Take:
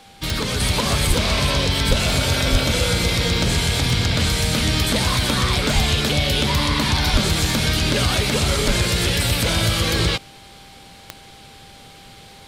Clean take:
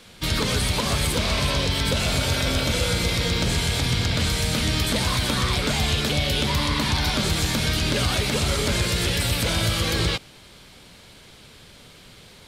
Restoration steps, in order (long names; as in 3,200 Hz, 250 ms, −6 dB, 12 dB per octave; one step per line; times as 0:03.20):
click removal
notch filter 790 Hz, Q 30
high-pass at the plosives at 0:01.07/0:01.88/0:02.51/0:05.74/0:07.12/0:08.66
level 0 dB, from 0:00.60 −3.5 dB